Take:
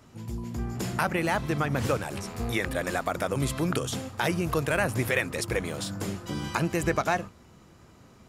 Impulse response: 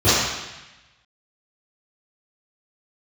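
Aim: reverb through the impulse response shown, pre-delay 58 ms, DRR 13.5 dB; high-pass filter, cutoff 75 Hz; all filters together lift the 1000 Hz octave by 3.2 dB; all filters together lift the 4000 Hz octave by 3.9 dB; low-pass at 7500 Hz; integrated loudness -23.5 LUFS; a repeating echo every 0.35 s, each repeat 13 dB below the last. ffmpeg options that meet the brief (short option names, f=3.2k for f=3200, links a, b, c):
-filter_complex "[0:a]highpass=75,lowpass=7.5k,equalizer=f=1k:t=o:g=4,equalizer=f=4k:t=o:g=5,aecho=1:1:350|700|1050:0.224|0.0493|0.0108,asplit=2[a][b];[1:a]atrim=start_sample=2205,adelay=58[c];[b][c]afir=irnorm=-1:irlink=0,volume=-37.5dB[d];[a][d]amix=inputs=2:normalize=0,volume=3.5dB"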